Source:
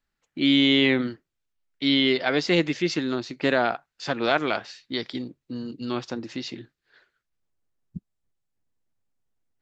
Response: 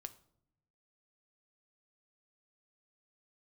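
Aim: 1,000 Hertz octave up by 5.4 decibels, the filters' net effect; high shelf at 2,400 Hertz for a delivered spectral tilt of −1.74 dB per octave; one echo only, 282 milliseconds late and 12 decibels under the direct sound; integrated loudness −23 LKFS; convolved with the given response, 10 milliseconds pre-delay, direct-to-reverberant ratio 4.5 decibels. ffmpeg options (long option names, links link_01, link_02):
-filter_complex "[0:a]equalizer=frequency=1000:width_type=o:gain=7.5,highshelf=frequency=2400:gain=3.5,aecho=1:1:282:0.251,asplit=2[link_01][link_02];[1:a]atrim=start_sample=2205,adelay=10[link_03];[link_02][link_03]afir=irnorm=-1:irlink=0,volume=0.5dB[link_04];[link_01][link_04]amix=inputs=2:normalize=0,volume=-3dB"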